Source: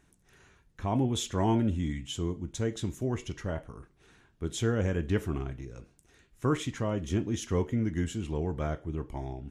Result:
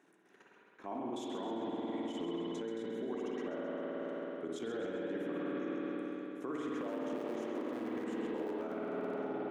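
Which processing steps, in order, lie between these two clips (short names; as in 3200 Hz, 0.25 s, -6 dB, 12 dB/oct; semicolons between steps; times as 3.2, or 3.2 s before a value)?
6.72–9.14 cycle switcher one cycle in 2, inverted; HPF 260 Hz 24 dB/oct; level quantiser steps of 12 dB; spring tank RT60 3.5 s, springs 53 ms, chirp 40 ms, DRR -3 dB; compressor, threshold -37 dBFS, peak gain reduction 9.5 dB; limiter -36 dBFS, peak gain reduction 10 dB; high shelf 2600 Hz -12 dB; split-band echo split 370 Hz, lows 0.268 s, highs 0.132 s, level -9.5 dB; attack slew limiter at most 410 dB/s; gain +5.5 dB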